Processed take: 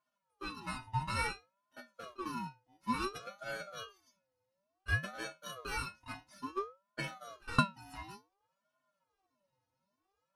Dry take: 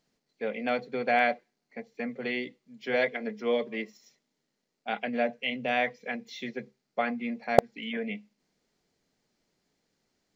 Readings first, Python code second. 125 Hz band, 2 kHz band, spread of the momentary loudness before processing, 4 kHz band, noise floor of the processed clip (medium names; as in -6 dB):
+5.0 dB, -8.0 dB, 16 LU, -5.5 dB, -85 dBFS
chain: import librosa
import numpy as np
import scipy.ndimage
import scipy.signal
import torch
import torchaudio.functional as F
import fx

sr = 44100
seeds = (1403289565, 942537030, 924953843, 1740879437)

y = fx.bit_reversed(x, sr, seeds[0], block=16)
y = scipy.signal.sosfilt(scipy.signal.butter(2, 4700.0, 'lowpass', fs=sr, output='sos'), y)
y = fx.stiff_resonator(y, sr, f0_hz=390.0, decay_s=0.23, stiffness=0.002)
y = fx.ring_lfo(y, sr, carrier_hz=770.0, swing_pct=35, hz=0.57)
y = F.gain(torch.from_numpy(y), 12.5).numpy()